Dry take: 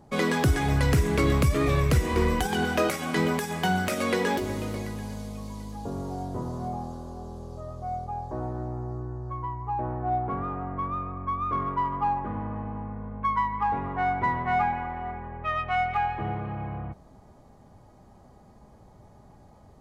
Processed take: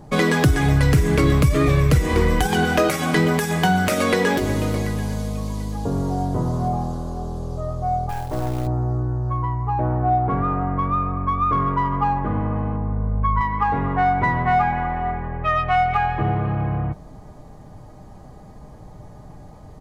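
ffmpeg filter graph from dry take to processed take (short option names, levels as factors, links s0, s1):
-filter_complex "[0:a]asettb=1/sr,asplit=3[s0][s1][s2];[s0]atrim=end=8.094[s3];[s1]atrim=start=8.09:end=8.67,asetpts=PTS-STARTPTS,afade=t=in:d=0.004:c=qsin,afade=t=out:st=0.576:d=0.004:c=qsin,lowpass=1600,aeval=exprs='(tanh(28.2*val(0)+0.45)-tanh(0.45))/28.2':c=same,acrusher=bits=4:mode=log:mix=0:aa=0.000001[s4];[s2]atrim=start=8.666[s5];[s3][s4]acrossfade=d=0.004:c1=hsin:c2=qsin[s6];[s6][s5]acrossfade=d=0.004:c1=qsin:c2=hsin,asettb=1/sr,asplit=3[s7][s8][s9];[s7]atrim=end=12.764[s10];[s8]atrim=start=12.76:end=13.41,asetpts=PTS-STARTPTS,afade=t=in:d=0.004:c=qsin,afade=t=out:st=0.646:d=0.004:c=qsin,lowpass=f=1200:p=1,asubboost=boost=12:cutoff=150[s11];[s9]atrim=start=13.406[s12];[s10][s11]acrossfade=d=0.004:c1=hsin:c2=qsin[s13];[s13][s12]acrossfade=d=0.004:c1=qsin:c2=hsin,lowshelf=f=120:g=6.5,aecho=1:1:6.6:0.33,acompressor=threshold=0.0562:ratio=2,volume=2.66"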